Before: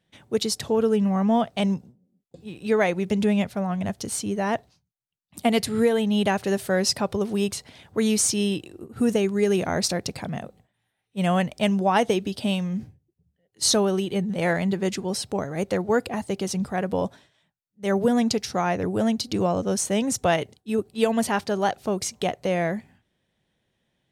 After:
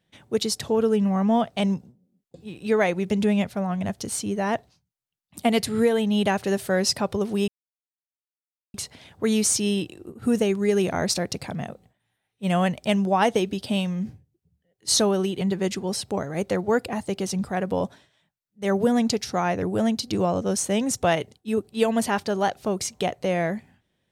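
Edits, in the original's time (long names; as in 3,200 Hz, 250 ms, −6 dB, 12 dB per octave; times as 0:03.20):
0:07.48: splice in silence 1.26 s
0:14.15–0:14.62: remove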